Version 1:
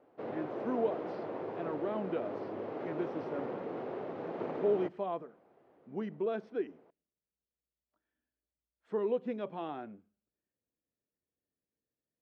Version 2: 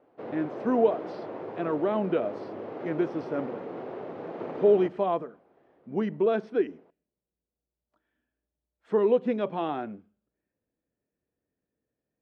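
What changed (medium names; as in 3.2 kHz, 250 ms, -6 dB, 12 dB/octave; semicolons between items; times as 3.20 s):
speech +9.5 dB; reverb: on, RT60 1.4 s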